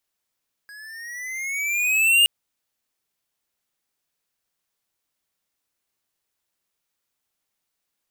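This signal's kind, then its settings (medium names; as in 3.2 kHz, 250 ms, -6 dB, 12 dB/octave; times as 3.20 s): gliding synth tone square, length 1.57 s, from 1.65 kHz, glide +9.5 st, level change +28 dB, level -14 dB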